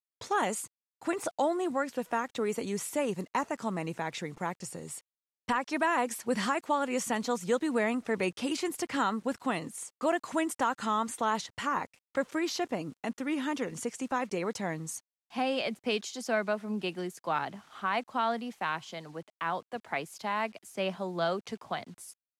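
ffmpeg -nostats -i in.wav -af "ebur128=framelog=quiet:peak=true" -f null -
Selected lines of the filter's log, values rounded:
Integrated loudness:
  I:         -32.6 LUFS
  Threshold: -42.7 LUFS
Loudness range:
  LRA:         4.0 LU
  Threshold: -52.7 LUFS
  LRA low:   -34.6 LUFS
  LRA high:  -30.7 LUFS
True peak:
  Peak:      -16.7 dBFS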